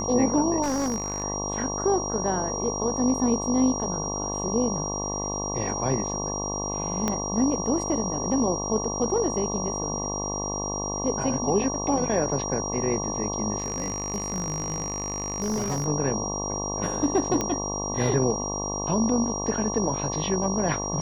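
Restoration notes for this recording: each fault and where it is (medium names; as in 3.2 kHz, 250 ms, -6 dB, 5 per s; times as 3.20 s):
buzz 50 Hz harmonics 23 -32 dBFS
whine 5.7 kHz -31 dBFS
0.62–1.24 s: clipped -22 dBFS
7.08 s: pop -11 dBFS
13.58–15.87 s: clipped -23 dBFS
17.41 s: pop -12 dBFS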